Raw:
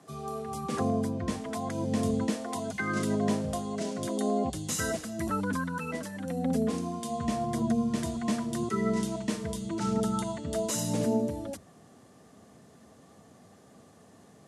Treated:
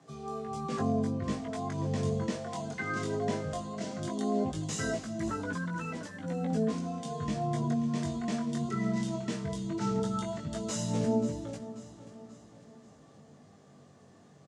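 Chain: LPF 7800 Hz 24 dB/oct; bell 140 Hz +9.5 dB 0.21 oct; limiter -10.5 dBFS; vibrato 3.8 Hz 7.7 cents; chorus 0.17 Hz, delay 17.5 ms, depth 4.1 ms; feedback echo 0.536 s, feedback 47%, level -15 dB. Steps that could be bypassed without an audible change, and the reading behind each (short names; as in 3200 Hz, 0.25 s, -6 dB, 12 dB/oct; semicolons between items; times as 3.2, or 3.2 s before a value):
limiter -10.5 dBFS: input peak -15.0 dBFS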